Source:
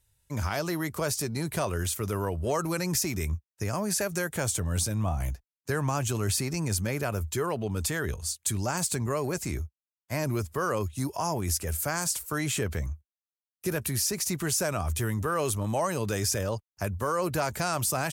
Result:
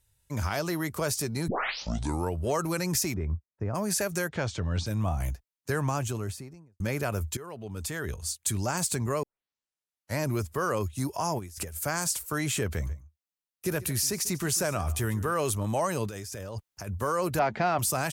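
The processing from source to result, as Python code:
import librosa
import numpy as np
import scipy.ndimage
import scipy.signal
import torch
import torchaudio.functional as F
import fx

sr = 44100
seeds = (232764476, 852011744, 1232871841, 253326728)

y = fx.lowpass(x, sr, hz=1100.0, slope=12, at=(3.13, 3.74), fade=0.02)
y = fx.lowpass(y, sr, hz=4900.0, slope=24, at=(4.27, 4.86), fade=0.02)
y = fx.studio_fade_out(y, sr, start_s=5.79, length_s=1.01)
y = fx.over_compress(y, sr, threshold_db=-36.0, ratio=-0.5, at=(11.38, 11.81), fade=0.02)
y = fx.echo_single(y, sr, ms=143, db=-18.0, at=(12.79, 15.31), fade=0.02)
y = fx.over_compress(y, sr, threshold_db=-38.0, ratio=-1.0, at=(16.07, 16.89))
y = fx.cabinet(y, sr, low_hz=120.0, low_slope=12, high_hz=3800.0, hz=(220.0, 370.0, 740.0, 2000.0), db=(9, 4, 8, 4), at=(17.39, 17.79))
y = fx.edit(y, sr, fx.tape_start(start_s=1.48, length_s=0.85),
    fx.fade_in_from(start_s=7.37, length_s=1.05, floor_db=-15.5),
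    fx.tape_start(start_s=9.23, length_s=0.97), tone=tone)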